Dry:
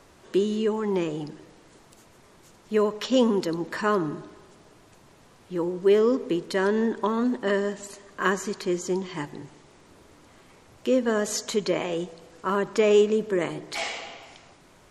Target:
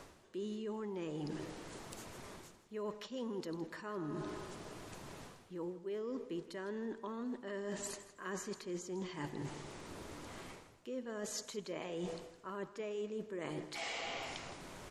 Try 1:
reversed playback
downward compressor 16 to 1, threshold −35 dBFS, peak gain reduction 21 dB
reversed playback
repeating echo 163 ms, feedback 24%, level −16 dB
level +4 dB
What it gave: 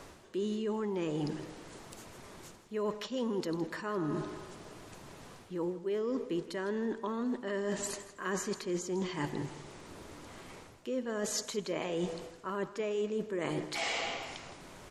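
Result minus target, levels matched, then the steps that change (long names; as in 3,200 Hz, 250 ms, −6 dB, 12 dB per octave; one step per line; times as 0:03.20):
downward compressor: peak gain reduction −7.5 dB
change: downward compressor 16 to 1, threshold −43 dBFS, peak gain reduction 28.5 dB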